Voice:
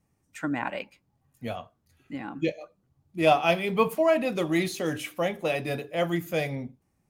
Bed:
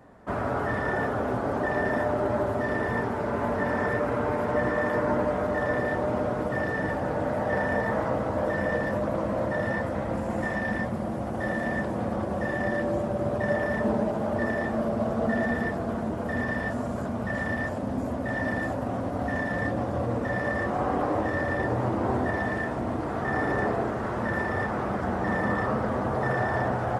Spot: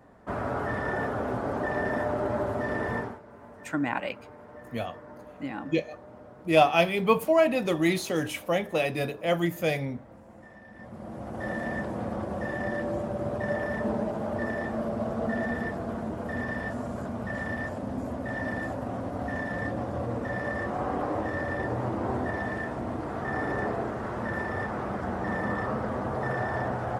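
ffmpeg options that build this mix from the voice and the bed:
-filter_complex "[0:a]adelay=3300,volume=1.12[s0];[1:a]volume=5.62,afade=t=out:st=2.95:d=0.25:silence=0.11885,afade=t=in:st=10.74:d=0.78:silence=0.133352[s1];[s0][s1]amix=inputs=2:normalize=0"

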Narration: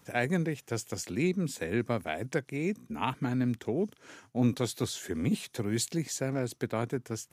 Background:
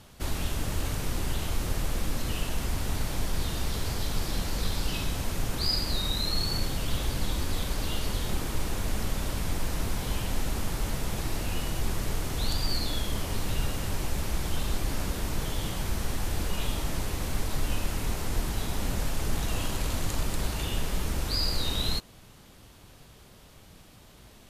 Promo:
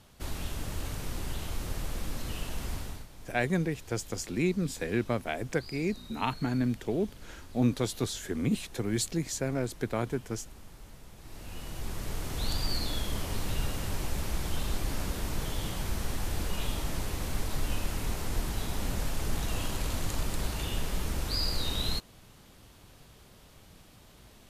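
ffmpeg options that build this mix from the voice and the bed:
-filter_complex "[0:a]adelay=3200,volume=1.06[s0];[1:a]volume=3.76,afade=t=out:st=2.74:d=0.33:silence=0.199526,afade=t=in:st=11.19:d=1.35:silence=0.141254[s1];[s0][s1]amix=inputs=2:normalize=0"

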